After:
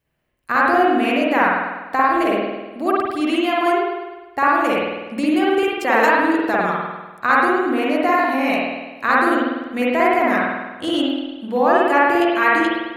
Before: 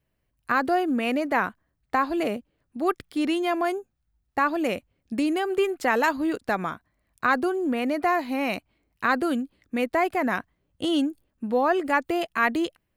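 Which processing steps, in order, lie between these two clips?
bass shelf 250 Hz -7 dB; spring tank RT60 1.2 s, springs 49 ms, chirp 65 ms, DRR -5.5 dB; trim +2.5 dB

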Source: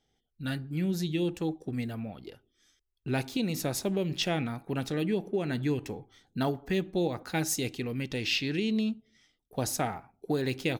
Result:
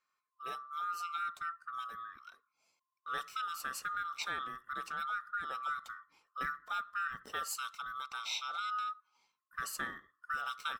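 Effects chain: split-band scrambler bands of 1 kHz; trim -9 dB

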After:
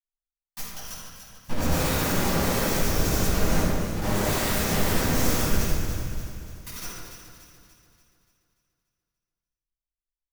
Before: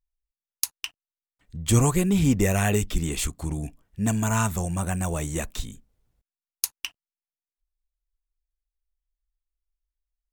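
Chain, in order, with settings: single-diode clipper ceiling -20.5 dBFS; expander -45 dBFS; FFT filter 110 Hz 0 dB, 380 Hz -26 dB, 1.4 kHz +2 dB, 2.2 kHz -23 dB, 3.4 kHz -28 dB, 5.8 kHz +7 dB, 8.2 kHz -16 dB, 14 kHz +7 dB; in parallel at +1 dB: compression 20:1, threshold -34 dBFS, peak gain reduction 15.5 dB; on the sum: granulator; integer overflow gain 30.5 dB; on a send: echo whose repeats swap between lows and highs 145 ms, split 1.9 kHz, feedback 70%, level -5 dB; on the sum: simulated room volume 920 m³, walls mixed, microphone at 9.4 m; trim -6 dB

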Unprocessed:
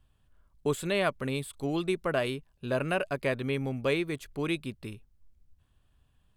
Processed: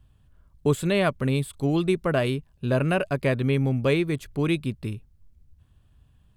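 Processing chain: peaking EQ 100 Hz +9 dB 2.9 oct; trim +3 dB

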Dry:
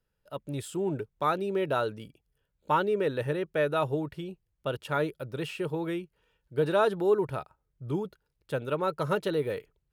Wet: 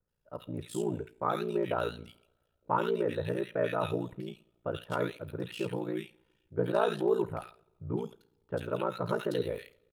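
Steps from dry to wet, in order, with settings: bands offset in time lows, highs 80 ms, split 1.7 kHz; two-slope reverb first 0.43 s, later 1.6 s, from -20 dB, DRR 14 dB; ring modulator 29 Hz

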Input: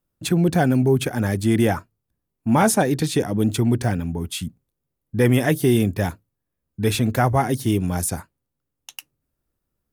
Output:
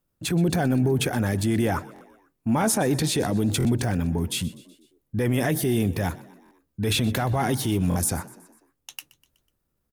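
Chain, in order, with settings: 6.91–7.72 s: peaking EQ 3.3 kHz +5.5 dB 0.7 oct; peak limiter -15.5 dBFS, peak gain reduction 10.5 dB; transient shaper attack -3 dB, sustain +3 dB; frequency-shifting echo 124 ms, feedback 54%, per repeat +48 Hz, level -20 dB; buffer glitch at 1.94/3.58/6.44/7.89 s, samples 1024, times 2; trim +1.5 dB

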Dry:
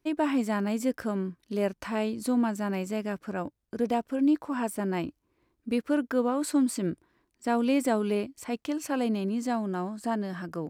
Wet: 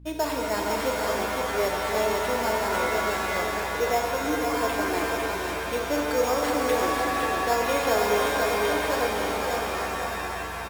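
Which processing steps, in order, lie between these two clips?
fade out at the end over 1.93 s; resonant low shelf 320 Hz -12.5 dB, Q 1.5; sample-rate reducer 6.1 kHz, jitter 0%; hum 60 Hz, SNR 16 dB; on a send: delay 506 ms -4.5 dB; on the sum: pitch-shifted reverb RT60 3.8 s, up +7 st, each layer -2 dB, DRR 0 dB

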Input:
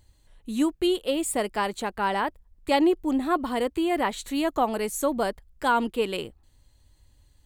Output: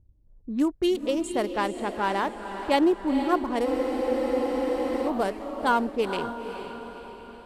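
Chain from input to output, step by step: local Wiener filter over 15 samples; level-controlled noise filter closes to 310 Hz, open at -22.5 dBFS; echo that smears into a reverb 482 ms, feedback 51%, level -9 dB; spectral freeze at 3.67 s, 1.40 s

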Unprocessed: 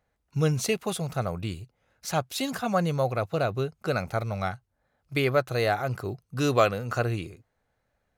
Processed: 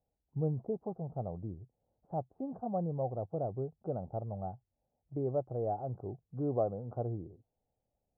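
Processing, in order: elliptic low-pass 810 Hz, stop band 80 dB; trim -8 dB

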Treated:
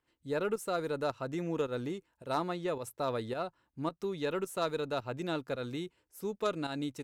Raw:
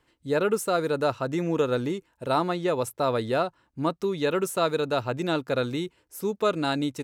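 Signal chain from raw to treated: volume shaper 108 bpm, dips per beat 1, -10 dB, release 165 ms; Chebyshev shaper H 2 -21 dB, 3 -16 dB, 4 -27 dB, 5 -26 dB, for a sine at -11 dBFS; trim -6 dB

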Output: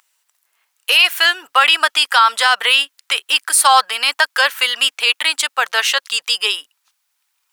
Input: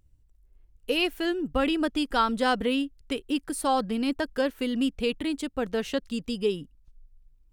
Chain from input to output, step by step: high-pass 980 Hz 24 dB/octave; loudness maximiser +23.5 dB; trim -1 dB

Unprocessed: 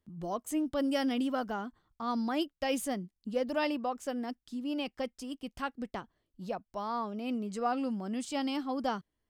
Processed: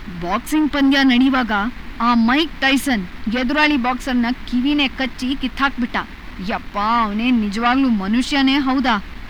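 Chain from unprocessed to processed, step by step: added noise brown -45 dBFS; waveshaping leveller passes 2; ten-band graphic EQ 125 Hz -8 dB, 250 Hz +9 dB, 500 Hz -9 dB, 1 kHz +5 dB, 2 kHz +12 dB, 4 kHz +8 dB, 8 kHz -7 dB; trim +6.5 dB

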